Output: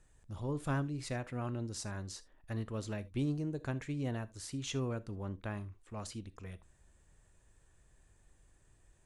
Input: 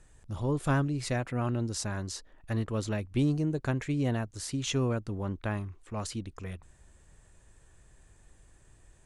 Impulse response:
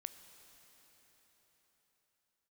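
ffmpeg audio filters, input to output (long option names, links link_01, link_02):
-filter_complex "[1:a]atrim=start_sample=2205,afade=type=out:start_time=0.14:duration=0.01,atrim=end_sample=6615,asetrate=48510,aresample=44100[link_01];[0:a][link_01]afir=irnorm=-1:irlink=0,volume=-2dB"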